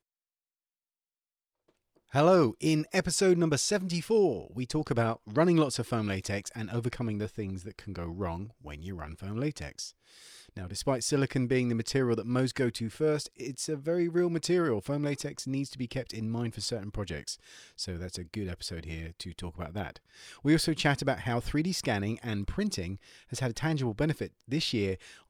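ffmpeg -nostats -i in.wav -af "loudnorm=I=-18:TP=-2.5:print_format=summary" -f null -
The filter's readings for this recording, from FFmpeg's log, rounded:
Input Integrated:    -31.0 LUFS
Input True Peak:     -12.4 dBTP
Input LRA:             8.9 LU
Input Threshold:     -41.4 LUFS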